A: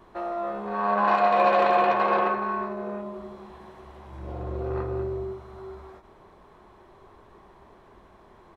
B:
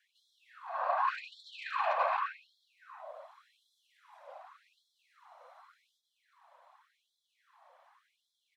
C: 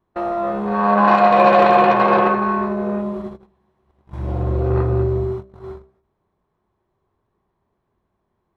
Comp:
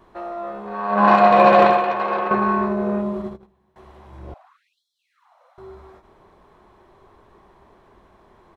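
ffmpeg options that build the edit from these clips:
-filter_complex "[2:a]asplit=2[a][b];[0:a]asplit=4[c][d][e][f];[c]atrim=end=1.05[g];[a]atrim=start=0.89:end=1.81[h];[d]atrim=start=1.65:end=2.312[i];[b]atrim=start=2.308:end=3.762[j];[e]atrim=start=3.758:end=4.342[k];[1:a]atrim=start=4.338:end=5.582[l];[f]atrim=start=5.578[m];[g][h]acrossfade=d=0.16:c1=tri:c2=tri[n];[n][i]acrossfade=d=0.16:c1=tri:c2=tri[o];[o][j]acrossfade=d=0.004:c1=hsin:c2=hsin[p];[p][k]acrossfade=d=0.004:c1=hsin:c2=hsin[q];[q][l]acrossfade=d=0.004:c1=hsin:c2=hsin[r];[r][m]acrossfade=d=0.004:c1=hsin:c2=hsin"

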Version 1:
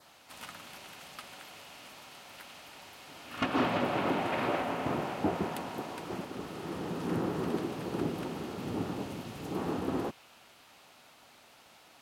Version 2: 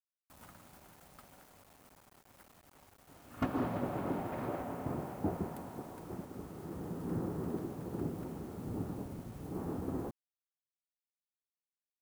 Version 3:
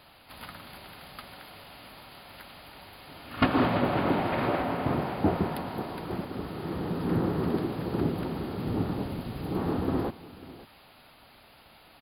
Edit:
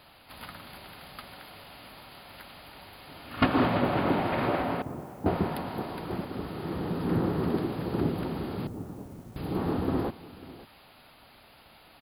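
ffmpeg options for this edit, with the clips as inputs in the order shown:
-filter_complex "[1:a]asplit=2[a][b];[2:a]asplit=3[c][d][e];[c]atrim=end=4.822[f];[a]atrim=start=4.818:end=5.262[g];[d]atrim=start=5.258:end=8.672[h];[b]atrim=start=8.668:end=9.362[i];[e]atrim=start=9.358[j];[f][g]acrossfade=d=0.004:c1=hsin:c2=hsin[k];[k][h]acrossfade=d=0.004:c1=hsin:c2=hsin[l];[l][i]acrossfade=d=0.004:c1=hsin:c2=hsin[m];[m][j]acrossfade=d=0.004:c1=hsin:c2=hsin"

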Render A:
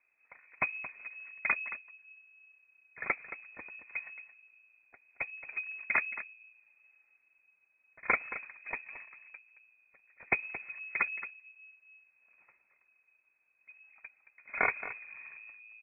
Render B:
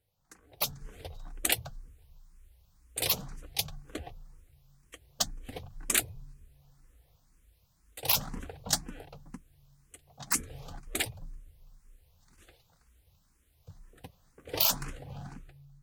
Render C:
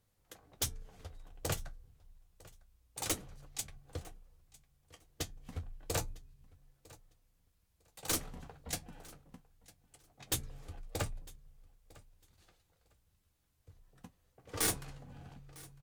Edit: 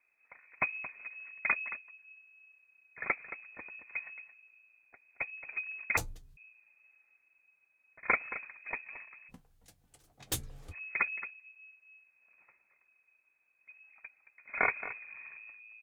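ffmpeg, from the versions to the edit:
-filter_complex "[2:a]asplit=2[a][b];[0:a]asplit=3[c][d][e];[c]atrim=end=5.972[f];[a]atrim=start=5.968:end=6.372[g];[d]atrim=start=6.368:end=9.32[h];[b]atrim=start=9.28:end=10.75[i];[e]atrim=start=10.71[j];[f][g]acrossfade=d=0.004:c1=hsin:c2=hsin[k];[k][h]acrossfade=d=0.004:c1=hsin:c2=hsin[l];[l][i]acrossfade=d=0.04:c1=tri:c2=tri[m];[m][j]acrossfade=d=0.04:c1=tri:c2=tri"

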